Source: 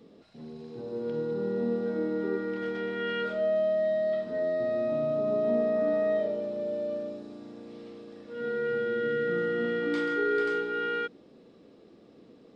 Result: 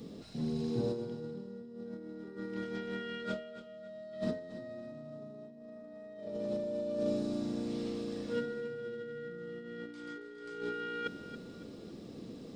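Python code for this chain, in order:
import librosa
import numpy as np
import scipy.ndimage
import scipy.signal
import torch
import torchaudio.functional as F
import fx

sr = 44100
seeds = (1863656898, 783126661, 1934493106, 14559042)

p1 = fx.bass_treble(x, sr, bass_db=10, treble_db=12)
p2 = fx.over_compress(p1, sr, threshold_db=-34.0, ratio=-0.5)
p3 = p2 + fx.echo_feedback(p2, sr, ms=278, feedback_pct=33, wet_db=-12.5, dry=0)
y = p3 * 10.0 ** (-4.0 / 20.0)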